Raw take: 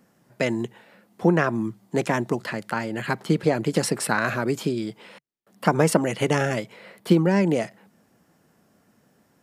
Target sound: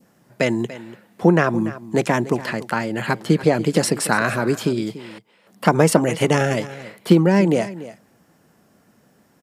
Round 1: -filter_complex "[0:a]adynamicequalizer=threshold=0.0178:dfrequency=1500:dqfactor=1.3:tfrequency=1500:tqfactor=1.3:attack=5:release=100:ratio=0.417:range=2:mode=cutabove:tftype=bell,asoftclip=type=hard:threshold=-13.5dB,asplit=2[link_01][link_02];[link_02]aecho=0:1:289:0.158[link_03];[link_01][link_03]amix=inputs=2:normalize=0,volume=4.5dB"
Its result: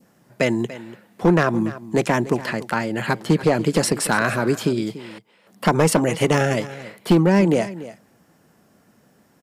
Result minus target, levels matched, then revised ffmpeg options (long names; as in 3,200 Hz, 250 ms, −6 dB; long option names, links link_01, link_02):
hard clipping: distortion +21 dB
-filter_complex "[0:a]adynamicequalizer=threshold=0.0178:dfrequency=1500:dqfactor=1.3:tfrequency=1500:tqfactor=1.3:attack=5:release=100:ratio=0.417:range=2:mode=cutabove:tftype=bell,asoftclip=type=hard:threshold=-6dB,asplit=2[link_01][link_02];[link_02]aecho=0:1:289:0.158[link_03];[link_01][link_03]amix=inputs=2:normalize=0,volume=4.5dB"